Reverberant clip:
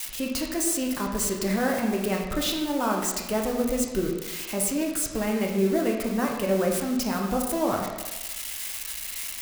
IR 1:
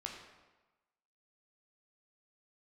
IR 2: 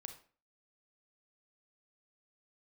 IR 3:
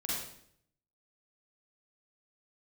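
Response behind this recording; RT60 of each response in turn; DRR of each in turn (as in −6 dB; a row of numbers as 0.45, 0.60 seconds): 1; 1.2, 0.40, 0.65 seconds; −0.5, 6.5, −7.0 decibels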